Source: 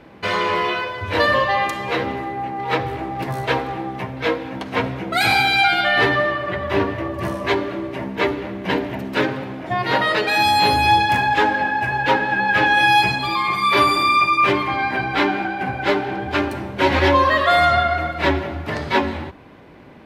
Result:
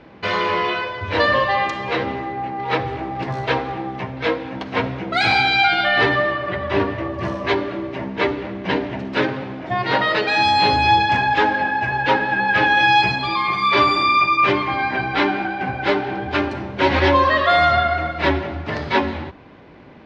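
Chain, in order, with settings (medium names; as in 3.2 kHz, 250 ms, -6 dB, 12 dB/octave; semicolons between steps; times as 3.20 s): low-pass 5.8 kHz 24 dB/octave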